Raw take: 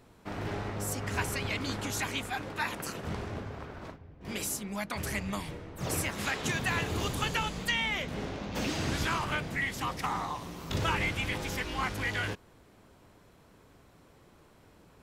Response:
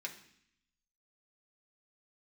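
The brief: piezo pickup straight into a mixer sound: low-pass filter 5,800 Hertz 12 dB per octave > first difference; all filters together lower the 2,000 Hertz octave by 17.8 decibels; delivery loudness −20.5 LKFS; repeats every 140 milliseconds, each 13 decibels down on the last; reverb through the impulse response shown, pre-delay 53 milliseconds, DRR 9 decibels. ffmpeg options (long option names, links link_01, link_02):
-filter_complex "[0:a]equalizer=frequency=2000:width_type=o:gain=-8.5,aecho=1:1:140|280|420:0.224|0.0493|0.0108,asplit=2[link_01][link_02];[1:a]atrim=start_sample=2205,adelay=53[link_03];[link_02][link_03]afir=irnorm=-1:irlink=0,volume=-8.5dB[link_04];[link_01][link_04]amix=inputs=2:normalize=0,lowpass=5800,aderivative,volume=26dB"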